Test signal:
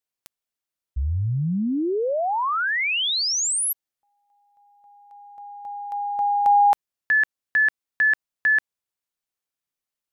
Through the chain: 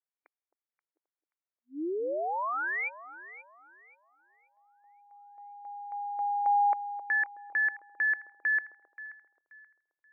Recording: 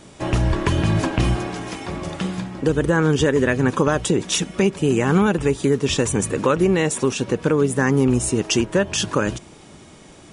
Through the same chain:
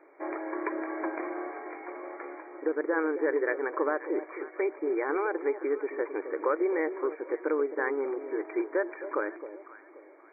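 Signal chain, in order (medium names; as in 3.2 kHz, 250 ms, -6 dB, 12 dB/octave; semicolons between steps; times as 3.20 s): brick-wall FIR band-pass 290–2400 Hz; on a send: echo whose repeats swap between lows and highs 265 ms, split 860 Hz, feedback 55%, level -10.5 dB; on the sum: trim -8.5 dB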